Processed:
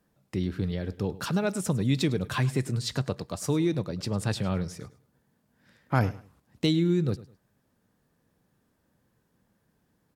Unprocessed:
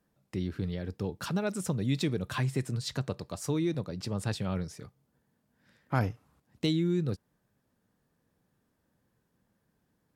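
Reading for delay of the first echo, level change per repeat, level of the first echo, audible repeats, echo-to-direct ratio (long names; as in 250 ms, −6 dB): 104 ms, −11.5 dB, −18.0 dB, 2, −17.5 dB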